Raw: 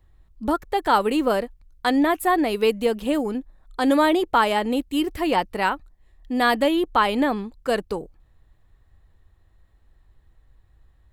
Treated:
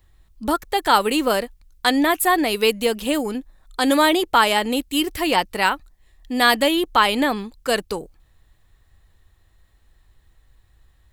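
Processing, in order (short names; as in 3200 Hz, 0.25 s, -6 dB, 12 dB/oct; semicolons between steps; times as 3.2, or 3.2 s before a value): high shelf 2000 Hz +11.5 dB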